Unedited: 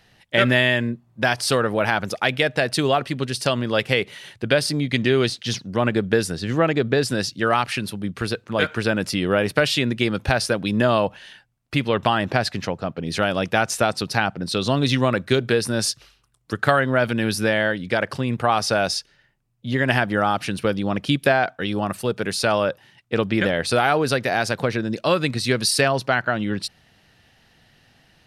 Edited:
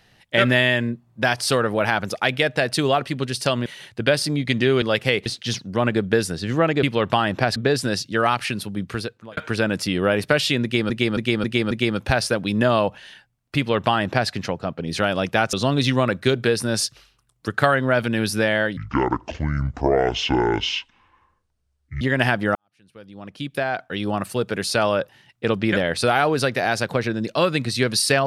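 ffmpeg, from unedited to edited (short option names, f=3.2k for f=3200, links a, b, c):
-filter_complex "[0:a]asplit=15[a][b][c][d][e][f][g][h][i][j][k][l][m][n][o];[a]atrim=end=3.662[p];[b]atrim=start=4.098:end=5.262[q];[c]atrim=start=3.658:end=4.102[r];[d]atrim=start=5.258:end=6.832[s];[e]atrim=start=11.758:end=12.492[t];[f]atrim=start=6.828:end=8.64,asetpts=PTS-STARTPTS,afade=t=out:st=1.322:d=0.49[u];[g]atrim=start=8.64:end=10.172,asetpts=PTS-STARTPTS,afade=t=in:d=0.004:c=hsin[v];[h]atrim=start=9.898:end=10.172[w];[i]atrim=start=9.898:end=10.172[x];[j]atrim=start=9.898:end=10.172[y];[k]atrim=start=9.898:end=13.722[z];[l]atrim=start=14.578:end=17.824[aa];[m]atrim=start=17.82:end=19.7,asetpts=PTS-STARTPTS,asetrate=25578,aresample=44100[ab];[n]atrim=start=19.696:end=20.24,asetpts=PTS-STARTPTS,afade=t=out:st=0.54:d=0.004:c=hsin[ac];[o]atrim=start=20.24,asetpts=PTS-STARTPTS,afade=t=in:d=1.56:c=qua[ad];[p][q]acrossfade=d=0.004:c1=hsin:c2=hsin[ae];[ae][r]acrossfade=d=0.004:c1=hsin:c2=hsin[af];[af][s]acrossfade=d=0.004:c1=hsin:c2=hsin[ag];[ag][t]acrossfade=d=0.004:c1=hsin:c2=hsin[ah];[u][v]concat=n=2:v=0:a=1[ai];[ah][ai]acrossfade=d=0.004:c1=hsin:c2=hsin[aj];[aj][w]acrossfade=d=0.004:c1=hsin:c2=hsin[ak];[ak][x]acrossfade=d=0.004:c1=hsin:c2=hsin[al];[al][y]acrossfade=d=0.004:c1=hsin:c2=hsin[am];[am][z]acrossfade=d=0.004:c1=hsin:c2=hsin[an];[an][aa]acrossfade=d=0.004:c1=hsin:c2=hsin[ao];[ao][ab]acrossfade=d=0.004:c1=hsin:c2=hsin[ap];[ac][ad]concat=n=2:v=0:a=1[aq];[ap][aq]acrossfade=d=0.004:c1=hsin:c2=hsin"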